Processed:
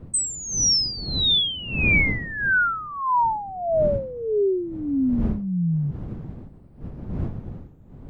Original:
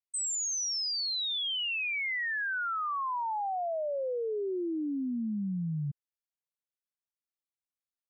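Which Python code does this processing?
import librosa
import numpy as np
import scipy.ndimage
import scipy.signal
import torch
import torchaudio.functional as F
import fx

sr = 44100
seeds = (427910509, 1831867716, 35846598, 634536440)

y = fx.spec_ripple(x, sr, per_octave=0.98, drift_hz=0.61, depth_db=17)
y = fx.dmg_wind(y, sr, seeds[0], corner_hz=170.0, level_db=-38.0)
y = F.gain(torch.from_numpy(y), 6.0).numpy()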